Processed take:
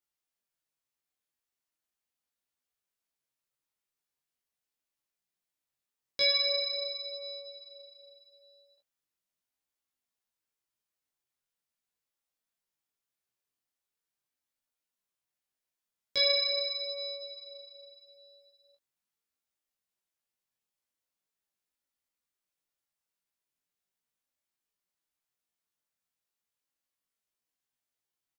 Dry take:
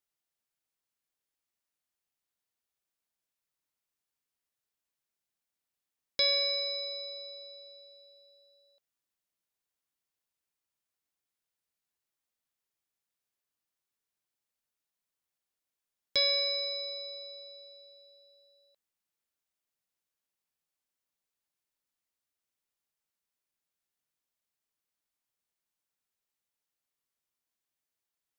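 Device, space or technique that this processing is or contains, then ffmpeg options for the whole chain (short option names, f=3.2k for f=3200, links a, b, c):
double-tracked vocal: -filter_complex "[0:a]asplit=2[a][b];[b]adelay=16,volume=-3dB[c];[a][c]amix=inputs=2:normalize=0,flanger=delay=19.5:depth=5.1:speed=0.41"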